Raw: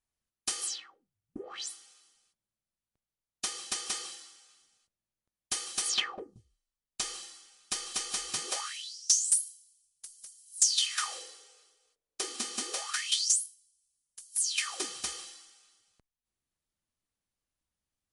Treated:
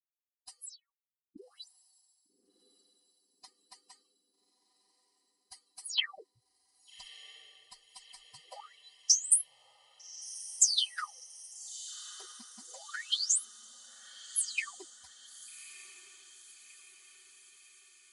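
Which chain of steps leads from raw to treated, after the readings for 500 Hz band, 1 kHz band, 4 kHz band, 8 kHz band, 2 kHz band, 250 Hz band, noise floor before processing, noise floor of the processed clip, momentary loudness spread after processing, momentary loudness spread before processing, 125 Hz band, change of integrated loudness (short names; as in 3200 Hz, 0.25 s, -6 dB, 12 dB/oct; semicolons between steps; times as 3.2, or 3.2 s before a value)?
under -10 dB, -7.5 dB, -3.0 dB, -2.0 dB, -3.0 dB, under -10 dB, under -85 dBFS, under -85 dBFS, 23 LU, 22 LU, n/a, 0.0 dB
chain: per-bin expansion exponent 3; tilt shelf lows -7 dB, about 680 Hz; diffused feedback echo 1.219 s, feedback 58%, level -15.5 dB; gain -2.5 dB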